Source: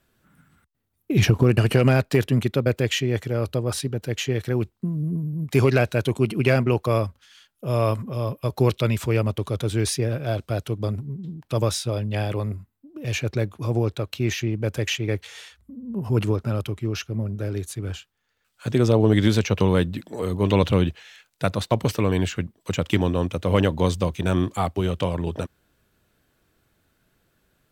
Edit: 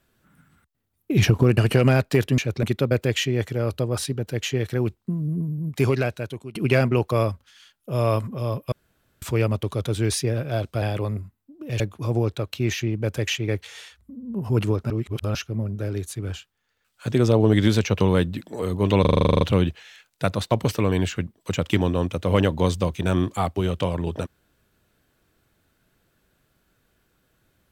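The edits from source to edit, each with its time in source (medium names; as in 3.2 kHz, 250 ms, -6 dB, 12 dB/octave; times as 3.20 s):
5.36–6.30 s: fade out, to -21.5 dB
8.47–8.97 s: room tone
10.57–12.17 s: delete
13.15–13.40 s: move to 2.38 s
16.50–16.95 s: reverse
20.61 s: stutter 0.04 s, 11 plays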